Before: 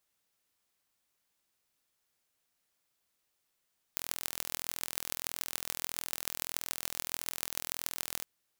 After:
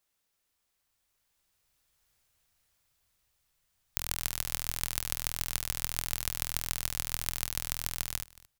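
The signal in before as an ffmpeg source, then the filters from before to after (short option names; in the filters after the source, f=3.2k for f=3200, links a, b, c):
-f lavfi -i "aevalsrc='0.596*eq(mod(n,1060),0)*(0.5+0.5*eq(mod(n,6360),0))':d=4.26:s=44100"
-af "asubboost=boost=10:cutoff=100,dynaudnorm=f=700:g=5:m=9dB,aecho=1:1:225:0.1"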